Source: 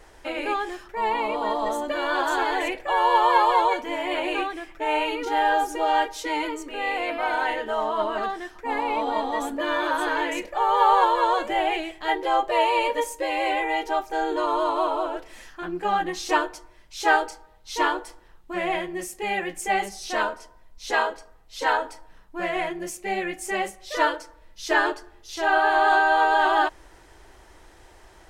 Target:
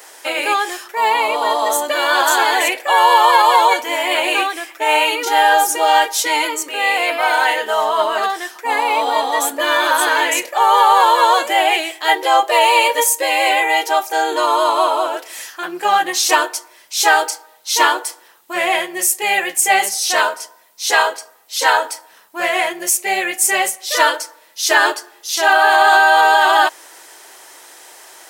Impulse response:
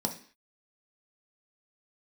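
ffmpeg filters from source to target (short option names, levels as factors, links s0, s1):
-af "highpass=490,aemphasis=mode=production:type=75kf,alimiter=level_in=3.16:limit=0.891:release=50:level=0:latency=1,volume=0.891"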